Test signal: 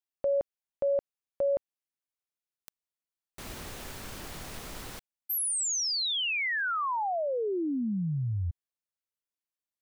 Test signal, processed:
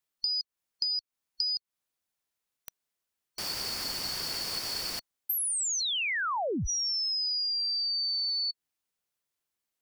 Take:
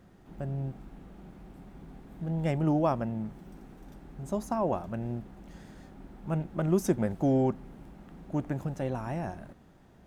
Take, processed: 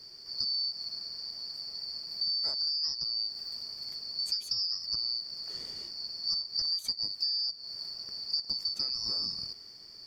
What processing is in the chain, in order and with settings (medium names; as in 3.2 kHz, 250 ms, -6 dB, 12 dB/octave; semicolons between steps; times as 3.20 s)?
four frequency bands reordered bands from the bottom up 2341; compression 16:1, threshold -36 dBFS; trim +7.5 dB